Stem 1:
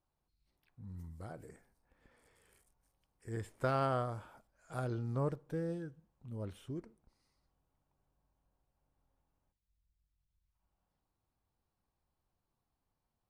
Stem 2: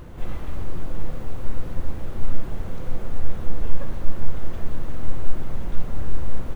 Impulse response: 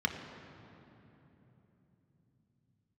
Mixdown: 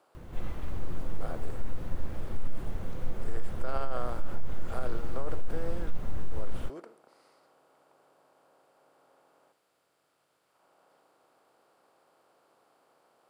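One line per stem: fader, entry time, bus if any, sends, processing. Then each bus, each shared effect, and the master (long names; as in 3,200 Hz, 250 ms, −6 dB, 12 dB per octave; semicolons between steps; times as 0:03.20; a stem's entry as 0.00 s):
0.0 dB, 0.00 s, no send, compressor on every frequency bin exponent 0.6; Chebyshev high-pass filter 440 Hz, order 2
−5.5 dB, 0.15 s, no send, no processing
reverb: not used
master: brickwall limiter −17 dBFS, peak gain reduction 9 dB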